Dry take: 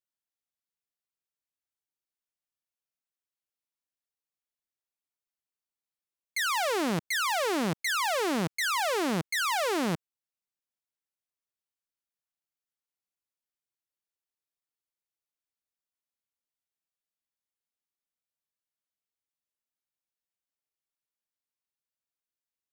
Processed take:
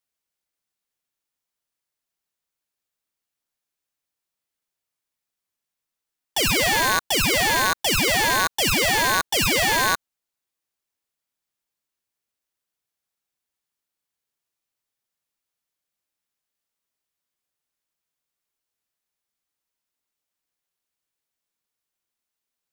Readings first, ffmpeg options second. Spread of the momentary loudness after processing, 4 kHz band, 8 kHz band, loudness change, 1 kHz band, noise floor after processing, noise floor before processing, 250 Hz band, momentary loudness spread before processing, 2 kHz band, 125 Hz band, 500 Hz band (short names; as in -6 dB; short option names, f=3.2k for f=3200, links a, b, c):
2 LU, +11.5 dB, +12.0 dB, +9.0 dB, +7.0 dB, under -85 dBFS, under -85 dBFS, +2.0 dB, 3 LU, +10.0 dB, +6.5 dB, +4.5 dB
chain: -af "aeval=exprs='val(0)*sgn(sin(2*PI*1300*n/s))':c=same,volume=8dB"